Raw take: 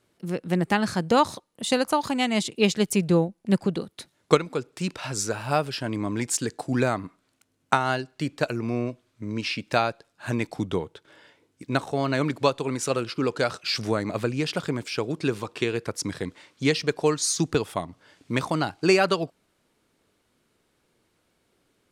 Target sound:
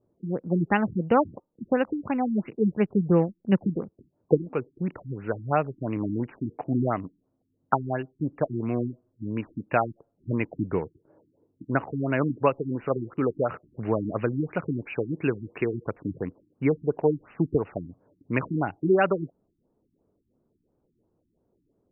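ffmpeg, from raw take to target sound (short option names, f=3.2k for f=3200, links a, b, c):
-filter_complex "[0:a]acrossover=split=860[a][b];[b]acrusher=bits=6:mix=0:aa=0.000001[c];[a][c]amix=inputs=2:normalize=0,aresample=11025,aresample=44100,afftfilt=real='re*lt(b*sr/1024,340*pow(3000/340,0.5+0.5*sin(2*PI*2.9*pts/sr)))':imag='im*lt(b*sr/1024,340*pow(3000/340,0.5+0.5*sin(2*PI*2.9*pts/sr)))':win_size=1024:overlap=0.75"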